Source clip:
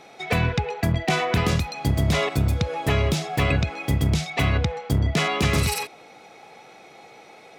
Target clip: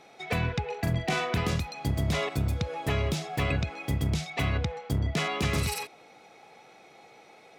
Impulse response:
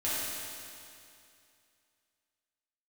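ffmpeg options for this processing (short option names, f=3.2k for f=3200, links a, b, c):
-filter_complex "[0:a]asettb=1/sr,asplit=3[a][b][c];[a]atrim=end=0.654[d];[b]atrim=start=0.65:end=1.34,asetpts=PTS-STARTPTS,afade=t=in:d=0.004:c=qsin,afade=t=out:st=0.686:d=0.004:c=qsin,asplit=2[e][f];[f]adelay=41,volume=-5.5dB[g];[e][g]amix=inputs=2:normalize=0,atrim=end_sample=30429[h];[c]atrim=start=1.336[i];[d][h]acrossfade=d=0.004:c1=hsin:c2=qsin[j];[j][i]acrossfade=d=0.004:c1=qsin:c2=hsin,volume=-6.5dB"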